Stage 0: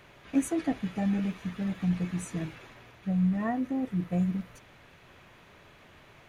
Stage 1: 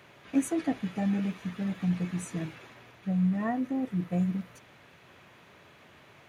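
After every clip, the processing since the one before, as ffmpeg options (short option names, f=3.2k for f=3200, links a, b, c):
-af "highpass=99"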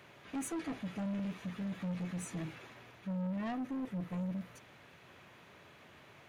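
-af "asoftclip=type=tanh:threshold=-32dB,volume=-2.5dB"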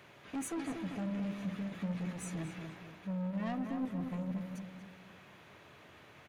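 -filter_complex "[0:a]asplit=2[a][b];[b]adelay=236,lowpass=f=2.9k:p=1,volume=-6dB,asplit=2[c][d];[d]adelay=236,lowpass=f=2.9k:p=1,volume=0.43,asplit=2[e][f];[f]adelay=236,lowpass=f=2.9k:p=1,volume=0.43,asplit=2[g][h];[h]adelay=236,lowpass=f=2.9k:p=1,volume=0.43,asplit=2[i][j];[j]adelay=236,lowpass=f=2.9k:p=1,volume=0.43[k];[a][c][e][g][i][k]amix=inputs=6:normalize=0"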